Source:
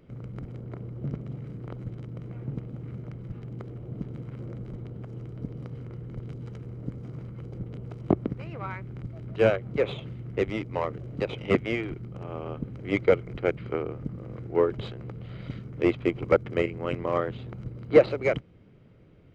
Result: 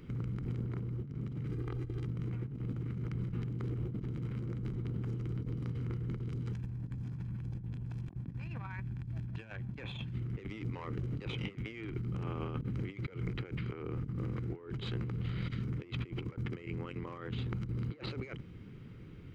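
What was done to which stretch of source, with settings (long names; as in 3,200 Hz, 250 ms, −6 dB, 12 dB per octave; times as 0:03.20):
0:01.51–0:02.05: comb filter 2.5 ms, depth 76%
0:06.53–0:10.13: comb filter 1.2 ms
whole clip: parametric band 620 Hz −14.5 dB 0.75 octaves; compressor whose output falls as the input rises −41 dBFS, ratio −1; level +1 dB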